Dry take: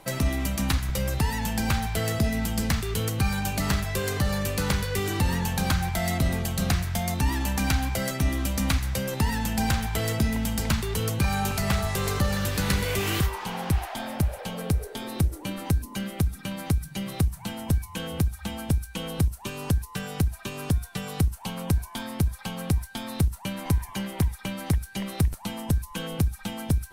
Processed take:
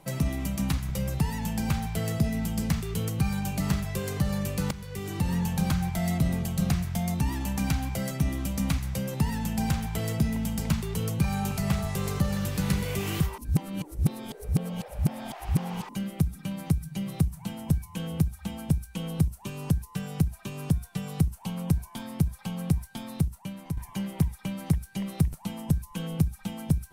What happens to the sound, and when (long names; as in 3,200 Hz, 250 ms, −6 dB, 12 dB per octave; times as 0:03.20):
0:04.71–0:05.59: fade in equal-power, from −14.5 dB
0:13.38–0:15.89: reverse
0:23.01–0:23.77: fade out, to −9.5 dB
whole clip: graphic EQ with 15 bands 160 Hz +10 dB, 1,600 Hz −4 dB, 4,000 Hz −3 dB; level −5 dB